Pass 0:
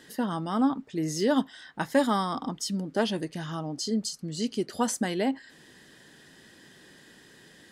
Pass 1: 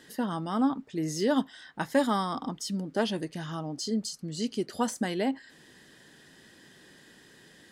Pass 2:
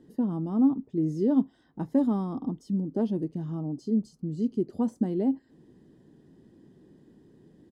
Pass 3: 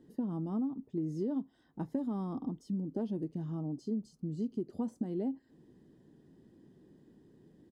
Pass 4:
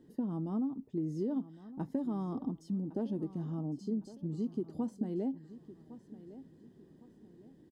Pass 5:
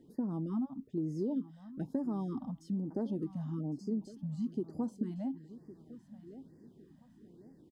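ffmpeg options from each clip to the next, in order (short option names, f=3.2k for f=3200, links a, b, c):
-af "deesser=0.6,volume=-1.5dB"
-af "firequalizer=gain_entry='entry(340,0);entry(550,-10);entry(990,-14);entry(1600,-26)':delay=0.05:min_phase=1,volume=4.5dB"
-af "acompressor=threshold=-26dB:ratio=12,volume=-4.5dB"
-af "aecho=1:1:1109|2218|3327:0.158|0.0571|0.0205"
-af "afftfilt=real='re*(1-between(b*sr/1024,360*pow(3200/360,0.5+0.5*sin(2*PI*1.1*pts/sr))/1.41,360*pow(3200/360,0.5+0.5*sin(2*PI*1.1*pts/sr))*1.41))':imag='im*(1-between(b*sr/1024,360*pow(3200/360,0.5+0.5*sin(2*PI*1.1*pts/sr))/1.41,360*pow(3200/360,0.5+0.5*sin(2*PI*1.1*pts/sr))*1.41))':win_size=1024:overlap=0.75"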